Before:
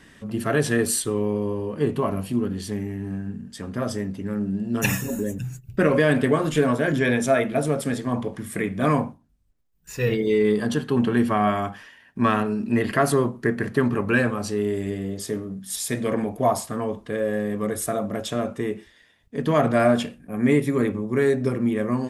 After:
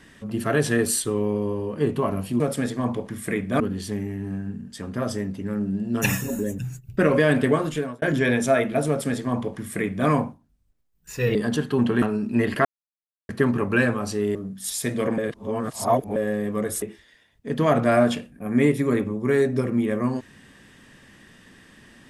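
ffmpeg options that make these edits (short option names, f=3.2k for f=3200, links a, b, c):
-filter_complex "[0:a]asplit=12[a][b][c][d][e][f][g][h][i][j][k][l];[a]atrim=end=2.402[m];[b]atrim=start=7.678:end=8.882[n];[c]atrim=start=2.398:end=6.82,asetpts=PTS-STARTPTS,afade=t=out:st=3.942:d=0.48[o];[d]atrim=start=6.82:end=10.152,asetpts=PTS-STARTPTS,afade=t=in:d=0.004:c=hsin[p];[e]atrim=start=10.528:end=11.202[q];[f]atrim=start=12.388:end=13.02,asetpts=PTS-STARTPTS,afade=t=out:st=0.628:d=0.004:c=hsin[r];[g]atrim=start=13.02:end=13.66,asetpts=PTS-STARTPTS,volume=0[s];[h]atrim=start=13.66:end=14.722,asetpts=PTS-STARTPTS,afade=t=in:d=0.004:c=hsin[t];[i]atrim=start=15.408:end=16.242[u];[j]atrim=start=16.238:end=17.222,asetpts=PTS-STARTPTS,areverse[v];[k]atrim=start=17.218:end=17.882[w];[l]atrim=start=18.698[x];[m][n]acrossfade=d=0.004:c1=hsin:c2=hsin[y];[o][p]concat=n=2:v=0:a=1[z];[y][z]acrossfade=d=0.004:c1=hsin:c2=hsin[aa];[aa][q]acrossfade=d=0.004:c1=hsin:c2=hsin[ab];[r][s][t]concat=n=3:v=0:a=1[ac];[ab][ac]acrossfade=d=0.004:c1=hsin:c2=hsin[ad];[ad][u]acrossfade=d=0.004:c1=hsin:c2=hsin[ae];[ae][v]acrossfade=d=0.004:c1=hsin:c2=hsin[af];[af][w]acrossfade=d=0.004:c1=hsin:c2=hsin[ag];[ag][x]acrossfade=d=0.004:c1=hsin:c2=hsin"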